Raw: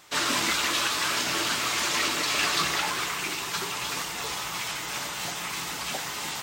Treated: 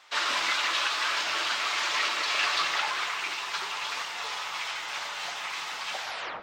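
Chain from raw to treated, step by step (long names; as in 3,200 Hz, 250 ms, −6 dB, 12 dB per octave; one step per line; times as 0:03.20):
turntable brake at the end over 0.43 s
three-way crossover with the lows and the highs turned down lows −20 dB, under 540 Hz, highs −18 dB, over 5,500 Hz
comb and all-pass reverb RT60 2.5 s, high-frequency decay 0.4×, pre-delay 15 ms, DRR 12 dB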